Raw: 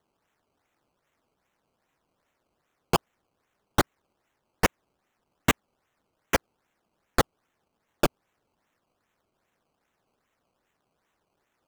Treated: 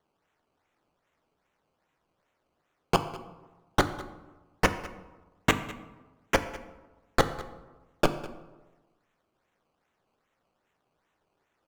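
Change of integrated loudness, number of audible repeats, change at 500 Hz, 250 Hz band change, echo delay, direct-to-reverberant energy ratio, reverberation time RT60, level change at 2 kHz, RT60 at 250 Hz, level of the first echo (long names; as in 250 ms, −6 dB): −1.0 dB, 1, +0.5 dB, −0.5 dB, 203 ms, 9.0 dB, 1.2 s, 0.0 dB, 1.3 s, −19.0 dB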